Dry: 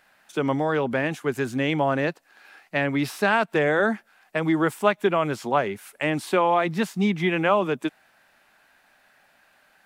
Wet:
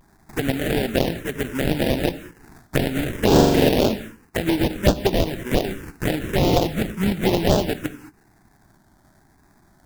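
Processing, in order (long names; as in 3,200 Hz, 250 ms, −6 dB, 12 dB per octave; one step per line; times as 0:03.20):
high-pass filter 140 Hz 24 dB per octave
tilt shelving filter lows −5.5 dB, about 1,300 Hz
sample-rate reduction 1,200 Hz, jitter 20%
reverb whose tail is shaped and stops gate 240 ms flat, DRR 12 dB
phaser swept by the level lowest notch 480 Hz, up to 2,200 Hz, full sweep at −16.5 dBFS
0:03.26–0:03.70: flutter between parallel walls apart 7.4 metres, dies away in 1.1 s
pitch vibrato 0.98 Hz 72 cents
every ending faded ahead of time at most 360 dB per second
level +6 dB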